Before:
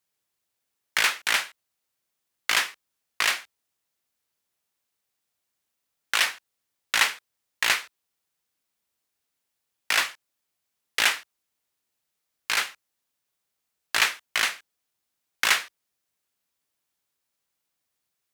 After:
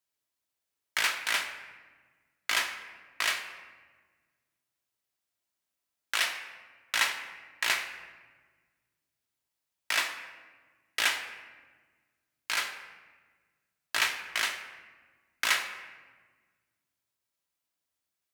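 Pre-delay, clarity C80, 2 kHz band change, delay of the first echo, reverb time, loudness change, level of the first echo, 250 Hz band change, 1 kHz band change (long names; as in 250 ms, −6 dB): 3 ms, 10.0 dB, −5.0 dB, no echo audible, 1.4 s, −5.5 dB, no echo audible, −5.0 dB, −5.0 dB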